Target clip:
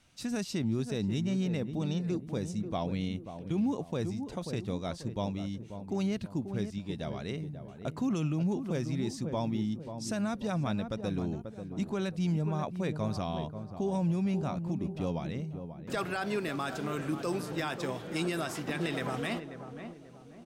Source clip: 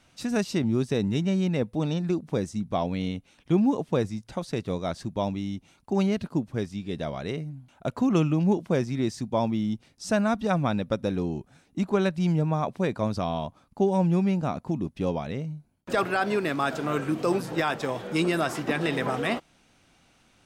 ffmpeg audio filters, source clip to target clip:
-filter_complex "[0:a]equalizer=f=710:w=0.32:g=-5,asplit=2[a][b];[b]adelay=537,lowpass=f=990:p=1,volume=-9dB,asplit=2[c][d];[d]adelay=537,lowpass=f=990:p=1,volume=0.42,asplit=2[e][f];[f]adelay=537,lowpass=f=990:p=1,volume=0.42,asplit=2[g][h];[h]adelay=537,lowpass=f=990:p=1,volume=0.42,asplit=2[i][j];[j]adelay=537,lowpass=f=990:p=1,volume=0.42[k];[a][c][e][g][i][k]amix=inputs=6:normalize=0,acrossover=split=4400[l][m];[l]alimiter=limit=-20.5dB:level=0:latency=1:release=29[n];[n][m]amix=inputs=2:normalize=0,volume=-2.5dB"

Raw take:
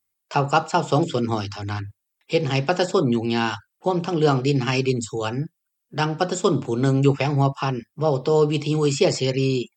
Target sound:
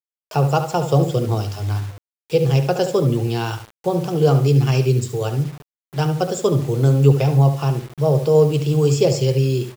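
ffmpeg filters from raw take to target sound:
-filter_complex "[0:a]equalizer=f=125:t=o:w=1:g=9,equalizer=f=250:t=o:w=1:g=-9,equalizer=f=500:t=o:w=1:g=5,equalizer=f=1k:t=o:w=1:g=-5,equalizer=f=2k:t=o:w=1:g=-7,equalizer=f=4k:t=o:w=1:g=-3,asplit=2[a][b];[b]adelay=71,lowpass=f=4.7k:p=1,volume=-9.5dB,asplit=2[c][d];[d]adelay=71,lowpass=f=4.7k:p=1,volume=0.33,asplit=2[e][f];[f]adelay=71,lowpass=f=4.7k:p=1,volume=0.33,asplit=2[g][h];[h]adelay=71,lowpass=f=4.7k:p=1,volume=0.33[i];[a][c][e][g][i]amix=inputs=5:normalize=0,acrusher=bits=6:mix=0:aa=0.000001,volume=1.5dB"

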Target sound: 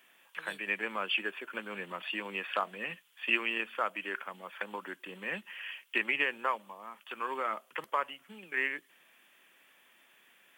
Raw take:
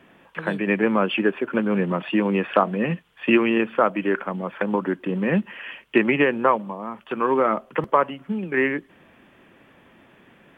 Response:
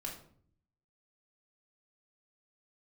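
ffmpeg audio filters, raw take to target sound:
-af "aderivative,volume=4.5dB"

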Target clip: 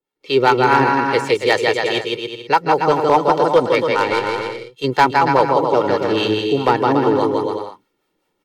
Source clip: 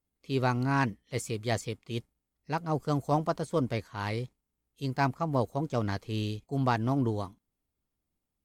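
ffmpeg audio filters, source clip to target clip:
-filter_complex "[0:a]equalizer=f=64:t=o:w=1.3:g=-14.5,acrossover=split=540[a][b];[a]aeval=exprs='val(0)*(1-0.7/2+0.7/2*cos(2*PI*4.9*n/s))':c=same[c];[b]aeval=exprs='val(0)*(1-0.7/2-0.7/2*cos(2*PI*4.9*n/s))':c=same[d];[c][d]amix=inputs=2:normalize=0,acrossover=split=170 4700:gain=0.1 1 0.2[e][f][g];[e][f][g]amix=inputs=3:normalize=0,aecho=1:1:2.2:0.63,asettb=1/sr,asplit=3[h][i][j];[h]atrim=end=3.874[k];[i]atrim=start=3.87:end=4.84,asetpts=PTS-STARTPTS,afade=t=in:d=0.004:c=qsin,afade=t=out:st=0.966:d=0.004:c=qsin,aeval=exprs='0.0708*(cos(1*acos(clip(val(0)/0.0708,-1,1)))-cos(1*PI/2))+0.00158*(cos(6*acos(clip(val(0)/0.0708,-1,1)))-cos(6*PI/2))+0.00447*(cos(7*acos(clip(val(0)/0.0708,-1,1)))-cos(7*PI/2))':c=same[l];[j]atrim=start=4.836[m];[k][l]acrossfade=d=0.004:c1=hsin:c2=qsin[n];[n][m]acrossfade=d=0.004:c1=qsin:c2=hsin,aecho=1:1:160|280|370|437.5|488.1:0.631|0.398|0.251|0.158|0.1,asplit=2[o][p];[p]acompressor=threshold=-37dB:ratio=12,volume=2dB[q];[o][q]amix=inputs=2:normalize=0,asoftclip=type=hard:threshold=-19.5dB,dynaudnorm=f=160:g=3:m=15dB"

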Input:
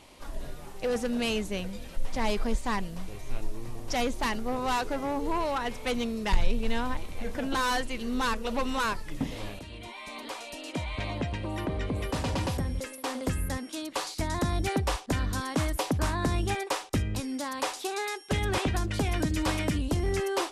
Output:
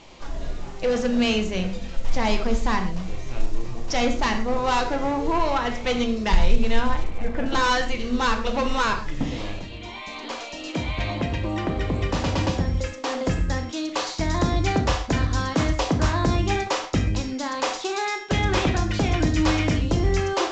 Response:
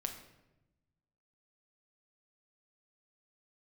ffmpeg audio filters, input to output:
-filter_complex "[0:a]asettb=1/sr,asplit=3[a][b][c];[a]atrim=end=7.034[d];[b]atrim=start=7.03:end=7.46,asetpts=PTS-STARTPTS,afade=t=in:d=0.004:c=qsin,afade=t=out:st=0.426:d=0.004:c=qsin,lowpass=2.4k[e];[c]atrim=start=7.456[f];[d][e]acrossfade=d=0.004:c1=hsin:c2=qsin[g];[g][f]acrossfade=d=0.004:c1=qsin:c2=hsin[h];[1:a]atrim=start_sample=2205,atrim=end_sample=6174[i];[h][i]afir=irnorm=-1:irlink=0,volume=6.5dB" -ar 16000 -c:a pcm_mulaw

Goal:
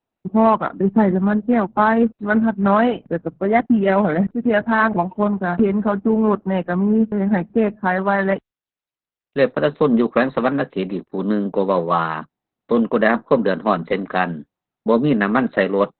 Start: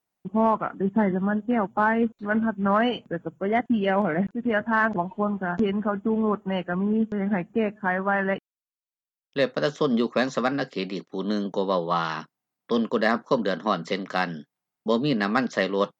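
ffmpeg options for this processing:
-filter_complex "[0:a]bandreject=f=3.3k:w=6.5,asplit=2[a][b];[b]adynamicsmooth=sensitivity=2.5:basefreq=1.2k,volume=2.5dB[c];[a][c]amix=inputs=2:normalize=0" -ar 48000 -c:a libopus -b:a 8k

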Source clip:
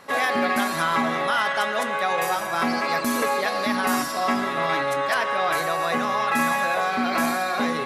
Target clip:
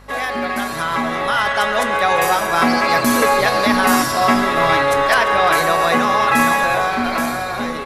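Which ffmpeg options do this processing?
-filter_complex "[0:a]dynaudnorm=f=210:g=13:m=11.5dB,aeval=exprs='val(0)+0.00708*(sin(2*PI*50*n/s)+sin(2*PI*2*50*n/s)/2+sin(2*PI*3*50*n/s)/3+sin(2*PI*4*50*n/s)/4+sin(2*PI*5*50*n/s)/5)':c=same,asplit=2[a][b];[b]asplit=6[c][d][e][f][g][h];[c]adelay=344,afreqshift=-110,volume=-16dB[i];[d]adelay=688,afreqshift=-220,volume=-20.3dB[j];[e]adelay=1032,afreqshift=-330,volume=-24.6dB[k];[f]adelay=1376,afreqshift=-440,volume=-28.9dB[l];[g]adelay=1720,afreqshift=-550,volume=-33.2dB[m];[h]adelay=2064,afreqshift=-660,volume=-37.5dB[n];[i][j][k][l][m][n]amix=inputs=6:normalize=0[o];[a][o]amix=inputs=2:normalize=0"

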